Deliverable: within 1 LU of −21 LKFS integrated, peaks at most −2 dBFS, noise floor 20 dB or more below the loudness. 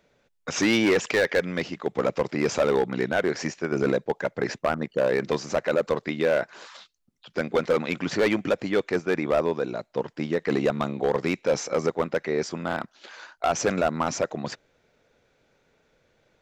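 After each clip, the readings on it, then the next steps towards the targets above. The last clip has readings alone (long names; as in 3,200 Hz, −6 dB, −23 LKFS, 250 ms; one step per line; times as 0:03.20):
share of clipped samples 1.5%; peaks flattened at −15.5 dBFS; integrated loudness −26.0 LKFS; sample peak −15.5 dBFS; target loudness −21.0 LKFS
→ clipped peaks rebuilt −15.5 dBFS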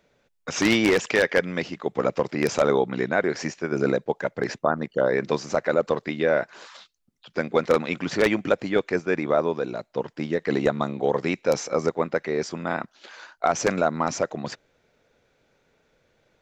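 share of clipped samples 0.0%; integrated loudness −24.5 LKFS; sample peak −6.5 dBFS; target loudness −21.0 LKFS
→ level +3.5 dB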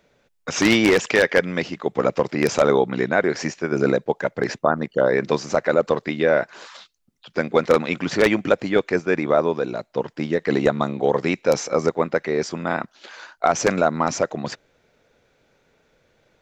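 integrated loudness −21.0 LKFS; sample peak −3.0 dBFS; background noise floor −66 dBFS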